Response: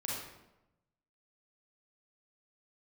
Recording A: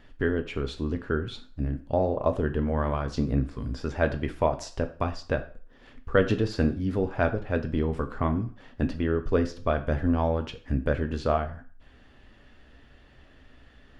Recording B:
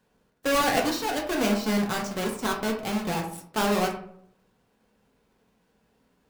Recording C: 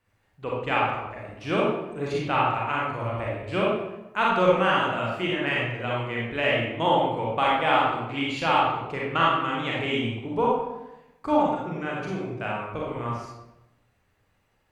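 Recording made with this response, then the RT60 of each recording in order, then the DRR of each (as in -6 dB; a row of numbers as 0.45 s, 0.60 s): C; 0.45 s, 0.65 s, 0.95 s; 6.5 dB, -0.5 dB, -5.0 dB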